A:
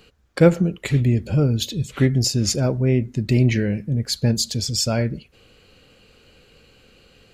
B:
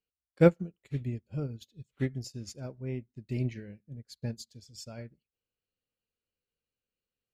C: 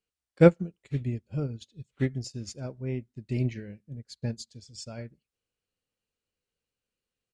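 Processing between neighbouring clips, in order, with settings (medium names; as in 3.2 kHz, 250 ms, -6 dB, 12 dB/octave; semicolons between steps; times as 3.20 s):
upward expansion 2.5:1, over -33 dBFS; trim -5.5 dB
resampled via 22.05 kHz; trim +3.5 dB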